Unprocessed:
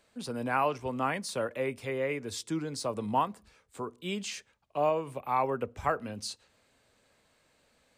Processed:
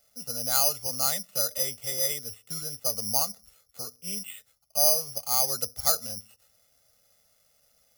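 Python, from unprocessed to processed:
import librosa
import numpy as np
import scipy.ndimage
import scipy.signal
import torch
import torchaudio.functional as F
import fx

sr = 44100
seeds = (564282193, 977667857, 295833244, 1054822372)

y = x + 0.96 * np.pad(x, (int(1.5 * sr / 1000.0), 0))[:len(x)]
y = (np.kron(scipy.signal.resample_poly(y, 1, 8), np.eye(8)[0]) * 8)[:len(y)]
y = y * librosa.db_to_amplitude(-8.0)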